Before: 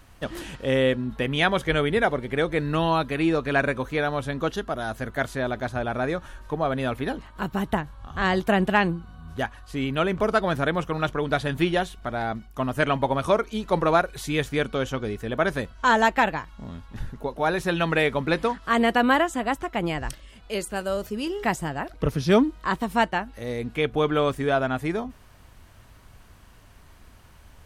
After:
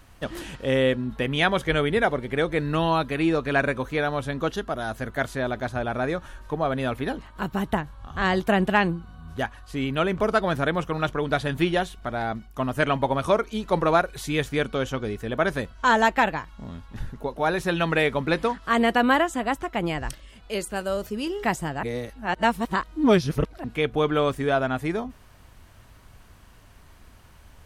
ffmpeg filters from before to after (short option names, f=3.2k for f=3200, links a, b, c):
-filter_complex "[0:a]asplit=3[a][b][c];[a]atrim=end=21.832[d];[b]atrim=start=21.828:end=23.642,asetpts=PTS-STARTPTS,areverse[e];[c]atrim=start=23.638[f];[d][e]acrossfade=d=0.004:c1=hsin:c2=hsin[g];[g][f]acrossfade=d=0.004:c1=hsin:c2=hsin"